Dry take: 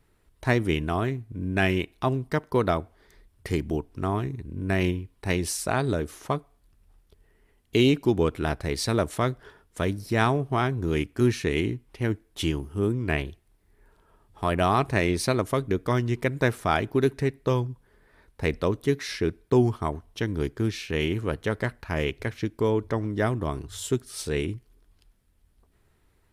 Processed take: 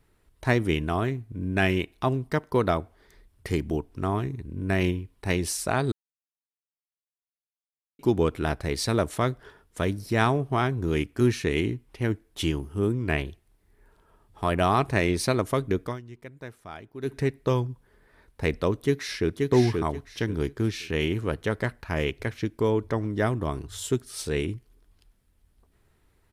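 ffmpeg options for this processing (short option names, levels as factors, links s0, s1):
-filter_complex "[0:a]asplit=2[s0][s1];[s1]afade=t=in:st=18.82:d=0.01,afade=t=out:st=19.43:d=0.01,aecho=0:1:530|1060|1590|2120:0.707946|0.176986|0.0442466|0.0110617[s2];[s0][s2]amix=inputs=2:normalize=0,asplit=5[s3][s4][s5][s6][s7];[s3]atrim=end=5.92,asetpts=PTS-STARTPTS,afade=t=out:st=5.916:d=0.004:c=hsin[s8];[s4]atrim=start=5.92:end=7.99,asetpts=PTS-STARTPTS,volume=0[s9];[s5]atrim=start=7.99:end=16.02,asetpts=PTS-STARTPTS,afade=t=in:d=0.004:c=hsin,afade=t=out:st=7.84:d=0.19:c=qua:silence=0.133352[s10];[s6]atrim=start=16.02:end=16.95,asetpts=PTS-STARTPTS,volume=0.133[s11];[s7]atrim=start=16.95,asetpts=PTS-STARTPTS,afade=t=in:d=0.19:c=qua:silence=0.133352[s12];[s8][s9][s10][s11][s12]concat=n=5:v=0:a=1"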